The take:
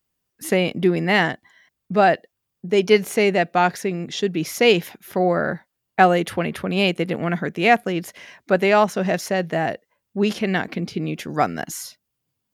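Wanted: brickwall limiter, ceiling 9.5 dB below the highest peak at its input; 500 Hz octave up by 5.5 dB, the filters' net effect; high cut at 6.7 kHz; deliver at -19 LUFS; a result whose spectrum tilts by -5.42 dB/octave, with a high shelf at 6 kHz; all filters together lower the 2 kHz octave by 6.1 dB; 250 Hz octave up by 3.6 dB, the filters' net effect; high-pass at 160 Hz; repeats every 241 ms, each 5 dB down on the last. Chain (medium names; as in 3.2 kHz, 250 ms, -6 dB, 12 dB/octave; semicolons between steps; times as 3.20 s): high-pass 160 Hz; low-pass 6.7 kHz; peaking EQ 250 Hz +5 dB; peaking EQ 500 Hz +6 dB; peaking EQ 2 kHz -9 dB; treble shelf 6 kHz +7 dB; peak limiter -8 dBFS; feedback delay 241 ms, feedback 56%, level -5 dB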